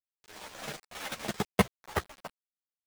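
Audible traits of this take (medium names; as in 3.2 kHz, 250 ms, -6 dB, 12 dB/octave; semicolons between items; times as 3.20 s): aliases and images of a low sample rate 13 kHz, jitter 0%; tremolo saw down 11 Hz, depth 45%; a quantiser's noise floor 8-bit, dither none; a shimmering, thickened sound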